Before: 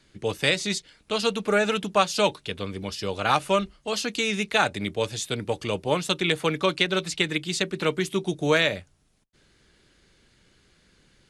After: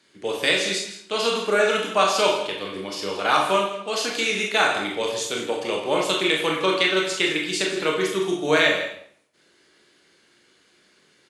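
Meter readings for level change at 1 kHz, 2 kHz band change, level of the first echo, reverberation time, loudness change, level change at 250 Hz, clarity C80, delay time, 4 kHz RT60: +3.5 dB, +4.0 dB, -12.5 dB, 0.65 s, +3.0 dB, +0.5 dB, 6.5 dB, 163 ms, 0.60 s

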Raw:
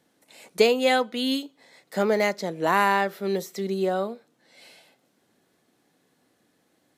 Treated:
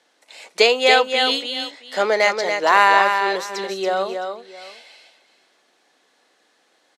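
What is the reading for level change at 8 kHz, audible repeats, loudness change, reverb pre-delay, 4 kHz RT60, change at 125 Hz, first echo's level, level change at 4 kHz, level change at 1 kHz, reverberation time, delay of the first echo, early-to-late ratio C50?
+6.5 dB, 2, +6.5 dB, no reverb, no reverb, under -10 dB, -6.0 dB, +10.5 dB, +8.5 dB, no reverb, 282 ms, no reverb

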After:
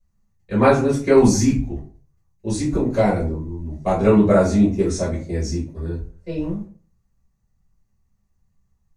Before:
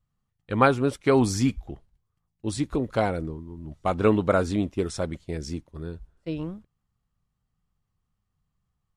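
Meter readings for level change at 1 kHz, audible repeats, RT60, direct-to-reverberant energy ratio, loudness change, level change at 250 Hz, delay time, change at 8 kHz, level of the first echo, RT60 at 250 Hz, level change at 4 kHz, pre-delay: +3.0 dB, no echo, 0.45 s, -9.0 dB, +6.5 dB, +8.0 dB, no echo, +8.5 dB, no echo, 0.40 s, +2.5 dB, 4 ms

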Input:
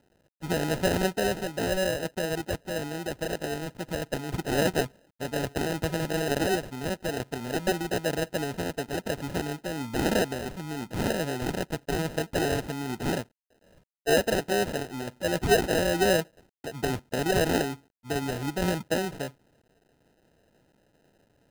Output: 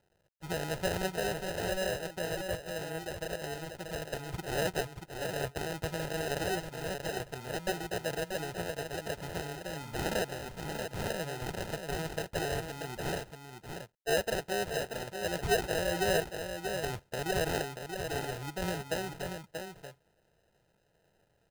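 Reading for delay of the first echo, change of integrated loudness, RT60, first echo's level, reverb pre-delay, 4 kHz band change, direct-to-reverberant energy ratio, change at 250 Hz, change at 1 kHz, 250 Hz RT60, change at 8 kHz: 634 ms, -6.5 dB, no reverb, -6.5 dB, no reverb, -4.5 dB, no reverb, -10.0 dB, -5.0 dB, no reverb, -4.5 dB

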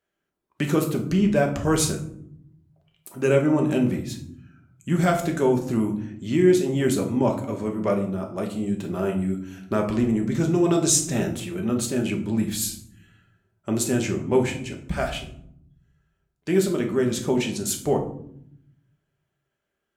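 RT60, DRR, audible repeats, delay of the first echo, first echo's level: 0.65 s, 2.0 dB, no echo, no echo, no echo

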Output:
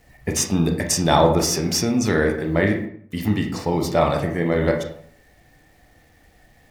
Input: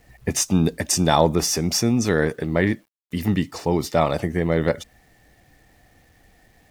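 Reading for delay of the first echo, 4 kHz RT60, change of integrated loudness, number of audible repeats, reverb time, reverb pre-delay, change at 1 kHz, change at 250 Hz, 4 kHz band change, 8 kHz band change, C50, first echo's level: no echo, 0.40 s, +1.0 dB, no echo, 0.60 s, 26 ms, +2.0 dB, +0.5 dB, +0.5 dB, 0.0 dB, 7.0 dB, no echo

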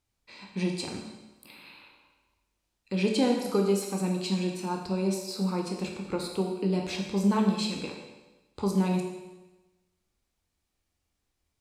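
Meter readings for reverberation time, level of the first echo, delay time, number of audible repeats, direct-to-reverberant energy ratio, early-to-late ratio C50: 1.1 s, no echo, no echo, no echo, 1.0 dB, 4.0 dB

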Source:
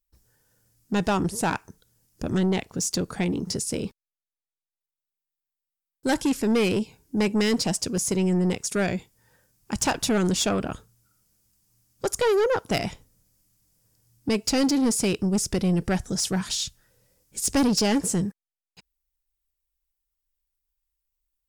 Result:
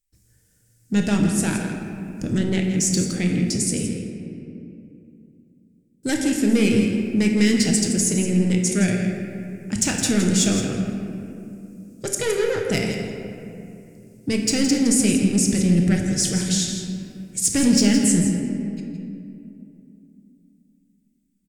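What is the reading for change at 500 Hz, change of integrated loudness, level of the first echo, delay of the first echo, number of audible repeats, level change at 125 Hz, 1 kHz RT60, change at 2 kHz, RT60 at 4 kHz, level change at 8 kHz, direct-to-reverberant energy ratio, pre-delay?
+0.5 dB, +4.5 dB, -9.5 dB, 165 ms, 1, +6.5 dB, 2.4 s, +3.0 dB, 1.4 s, +6.5 dB, 0.5 dB, 6 ms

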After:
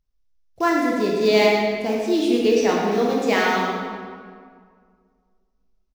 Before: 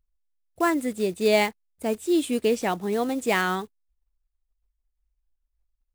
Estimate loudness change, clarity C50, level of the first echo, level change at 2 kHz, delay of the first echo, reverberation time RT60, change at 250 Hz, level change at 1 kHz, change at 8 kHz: +5.0 dB, -0.5 dB, -7.5 dB, +4.5 dB, 110 ms, 2.0 s, +5.0 dB, +5.5 dB, +0.5 dB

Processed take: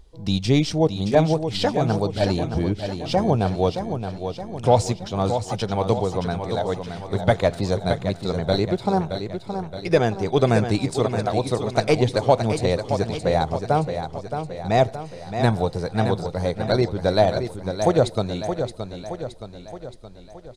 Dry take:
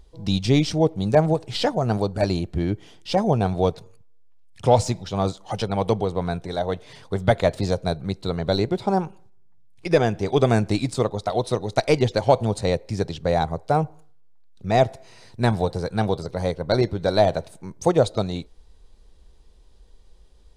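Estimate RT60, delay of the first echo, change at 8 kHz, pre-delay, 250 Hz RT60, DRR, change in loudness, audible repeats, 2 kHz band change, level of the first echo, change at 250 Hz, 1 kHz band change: no reverb, 621 ms, +1.0 dB, no reverb, no reverb, no reverb, 0.0 dB, 5, +1.0 dB, -8.0 dB, +1.0 dB, +1.0 dB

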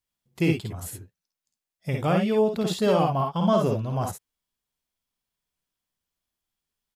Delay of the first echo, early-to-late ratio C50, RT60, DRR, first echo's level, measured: 53 ms, no reverb, no reverb, no reverb, -5.0 dB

